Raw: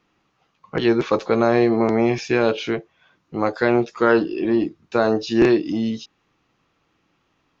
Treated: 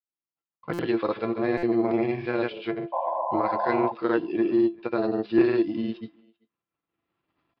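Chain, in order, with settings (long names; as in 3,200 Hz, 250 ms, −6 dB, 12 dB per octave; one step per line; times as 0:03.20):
running median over 9 samples
camcorder AGC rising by 6.8 dB per second
high-pass filter 66 Hz
hum removal 210.9 Hz, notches 3
downward expander −46 dBFS
granular cloud, pitch spread up and down by 0 semitones
sound drawn into the spectrogram noise, 0:02.92–0:03.92, 510–1,100 Hz −21 dBFS
tuned comb filter 340 Hz, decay 0.19 s, harmonics all, mix 70%
far-end echo of a speakerphone 390 ms, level −25 dB
downsampling to 11,025 Hz
buffer that repeats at 0:00.73/0:01.57, samples 256, times 9
level +1.5 dB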